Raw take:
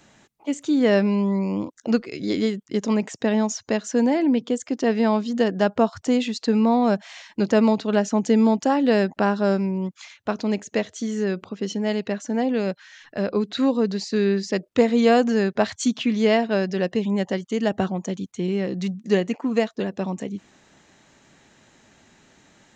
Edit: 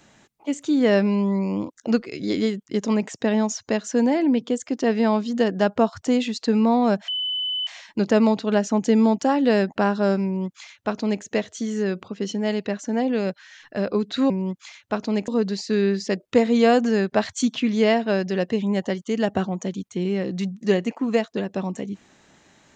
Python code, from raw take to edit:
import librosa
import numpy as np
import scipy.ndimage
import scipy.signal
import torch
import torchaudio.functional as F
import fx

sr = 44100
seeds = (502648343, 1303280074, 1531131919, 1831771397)

y = fx.edit(x, sr, fx.insert_tone(at_s=7.08, length_s=0.59, hz=3010.0, db=-23.0),
    fx.duplicate(start_s=9.66, length_s=0.98, to_s=13.71), tone=tone)